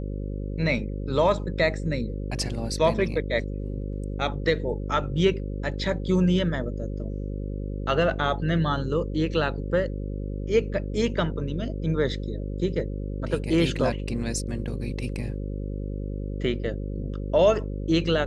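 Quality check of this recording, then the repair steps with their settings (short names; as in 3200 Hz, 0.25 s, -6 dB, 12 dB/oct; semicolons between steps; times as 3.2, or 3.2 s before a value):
buzz 50 Hz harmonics 11 -31 dBFS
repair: de-hum 50 Hz, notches 11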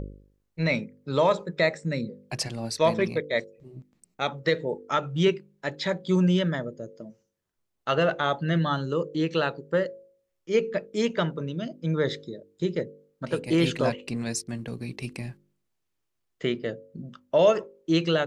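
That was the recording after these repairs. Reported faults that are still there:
none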